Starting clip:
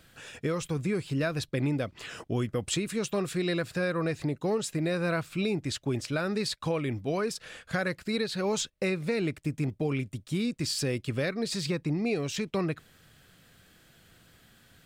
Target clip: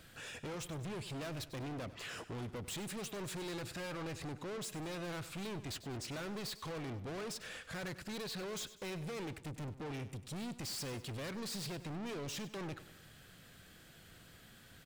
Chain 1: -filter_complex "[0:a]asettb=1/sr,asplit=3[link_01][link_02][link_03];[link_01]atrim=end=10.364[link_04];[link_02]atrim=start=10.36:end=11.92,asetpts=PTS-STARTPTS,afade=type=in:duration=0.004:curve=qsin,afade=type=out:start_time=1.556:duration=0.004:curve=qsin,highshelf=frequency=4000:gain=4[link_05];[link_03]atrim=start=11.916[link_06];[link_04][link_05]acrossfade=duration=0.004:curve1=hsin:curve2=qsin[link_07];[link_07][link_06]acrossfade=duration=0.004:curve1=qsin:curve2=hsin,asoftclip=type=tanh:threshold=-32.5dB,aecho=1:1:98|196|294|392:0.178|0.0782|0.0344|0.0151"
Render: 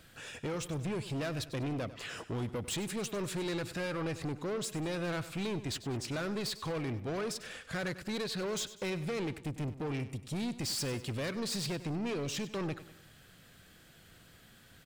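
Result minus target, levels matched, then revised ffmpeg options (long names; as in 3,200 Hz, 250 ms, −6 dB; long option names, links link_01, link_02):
soft clipping: distortion −4 dB
-filter_complex "[0:a]asettb=1/sr,asplit=3[link_01][link_02][link_03];[link_01]atrim=end=10.364[link_04];[link_02]atrim=start=10.36:end=11.92,asetpts=PTS-STARTPTS,afade=type=in:duration=0.004:curve=qsin,afade=type=out:start_time=1.556:duration=0.004:curve=qsin,highshelf=frequency=4000:gain=4[link_05];[link_03]atrim=start=11.916[link_06];[link_04][link_05]acrossfade=duration=0.004:curve1=hsin:curve2=qsin[link_07];[link_07][link_06]acrossfade=duration=0.004:curve1=qsin:curve2=hsin,asoftclip=type=tanh:threshold=-41dB,aecho=1:1:98|196|294|392:0.178|0.0782|0.0344|0.0151"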